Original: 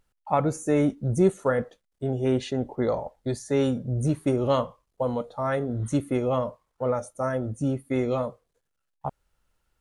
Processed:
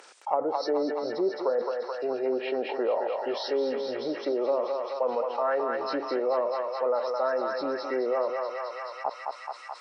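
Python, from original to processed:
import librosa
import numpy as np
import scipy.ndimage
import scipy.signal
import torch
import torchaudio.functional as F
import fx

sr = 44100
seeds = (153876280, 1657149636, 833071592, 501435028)

y = fx.freq_compress(x, sr, knee_hz=1700.0, ratio=1.5)
y = fx.env_lowpass_down(y, sr, base_hz=600.0, full_db=-18.5)
y = scipy.signal.sosfilt(scipy.signal.butter(4, 400.0, 'highpass', fs=sr, output='sos'), y)
y = fx.echo_thinned(y, sr, ms=215, feedback_pct=81, hz=920.0, wet_db=-3.5)
y = fx.env_flatten(y, sr, amount_pct=50)
y = y * librosa.db_to_amplitude(-2.0)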